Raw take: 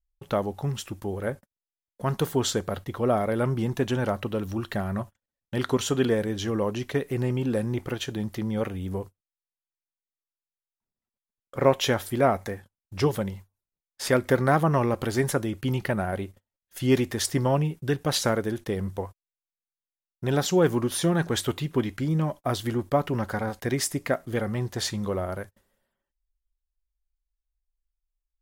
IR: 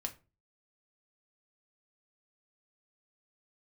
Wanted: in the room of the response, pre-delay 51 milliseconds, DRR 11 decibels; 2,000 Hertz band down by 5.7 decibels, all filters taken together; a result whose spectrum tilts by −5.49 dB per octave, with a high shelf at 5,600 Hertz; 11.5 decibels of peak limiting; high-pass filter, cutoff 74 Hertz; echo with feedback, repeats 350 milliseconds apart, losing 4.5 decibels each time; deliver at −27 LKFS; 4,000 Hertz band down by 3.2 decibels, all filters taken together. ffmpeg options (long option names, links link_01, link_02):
-filter_complex "[0:a]highpass=74,equalizer=frequency=2000:width_type=o:gain=-7.5,equalizer=frequency=4000:width_type=o:gain=-3.5,highshelf=frequency=5600:gain=4,alimiter=limit=-17dB:level=0:latency=1,aecho=1:1:350|700|1050|1400|1750|2100|2450|2800|3150:0.596|0.357|0.214|0.129|0.0772|0.0463|0.0278|0.0167|0.01,asplit=2[link_01][link_02];[1:a]atrim=start_sample=2205,adelay=51[link_03];[link_02][link_03]afir=irnorm=-1:irlink=0,volume=-10.5dB[link_04];[link_01][link_04]amix=inputs=2:normalize=0,volume=1dB"